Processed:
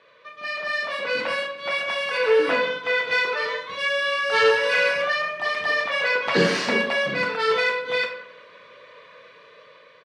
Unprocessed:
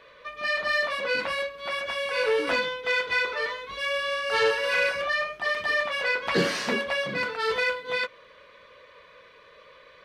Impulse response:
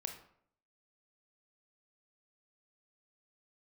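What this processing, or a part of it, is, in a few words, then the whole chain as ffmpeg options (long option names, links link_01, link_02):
far laptop microphone: -filter_complex "[0:a]asettb=1/sr,asplit=3[link_01][link_02][link_03];[link_01]atrim=end=5.604[link_04];[link_02]atrim=start=5.6:end=6.42,asetpts=PTS-STARTPTS,afade=type=in:duration=0.004:curve=qsin,afade=type=out:start_time=0.816:duration=0.004:curve=qsin,lowpass=9800[link_05];[link_03]atrim=start=6.416[link_06];[link_04][link_05]acrossfade=duration=0.004:curve1=hsin:curve2=qsin[link_07];[link_07][link_06]acrossfade=duration=0.004:curve1=qsin:curve2=hsin,lowpass=8500,asettb=1/sr,asplit=3[link_08][link_09][link_10];[link_08]atrim=end=2.174[link_11];[link_09]atrim=start=2.17:end=3.11,asetpts=PTS-STARTPTS,afade=type=in:duration=0.004:curve=qsin,afade=type=out:start_time=0.936:duration=0.004:curve=qsin,acrossover=split=2900[link_12][link_13];[link_13]acompressor=threshold=-41dB:ratio=4:attack=1:release=60[link_14];[link_12][link_14]amix=inputs=2:normalize=0[link_15];[link_10]atrim=start=3.106[link_16];[link_11][link_15]acrossfade=duration=0.004:curve1=hsin:curve2=qsin[link_17];[link_17][link_16]acrossfade=duration=0.004:curve1=qsin:curve2=hsin,asplit=2[link_18][link_19];[link_19]adelay=181,lowpass=frequency=2000:poles=1,volume=-22.5dB,asplit=2[link_20][link_21];[link_21]adelay=181,lowpass=frequency=2000:poles=1,volume=0.45,asplit=2[link_22][link_23];[link_23]adelay=181,lowpass=frequency=2000:poles=1,volume=0.45[link_24];[link_18][link_20][link_22][link_24]amix=inputs=4:normalize=0[link_25];[1:a]atrim=start_sample=2205[link_26];[link_25][link_26]afir=irnorm=-1:irlink=0,highpass=frequency=110:width=0.5412,highpass=frequency=110:width=1.3066,dynaudnorm=framelen=180:gausssize=11:maxgain=7dB,volume=-1dB"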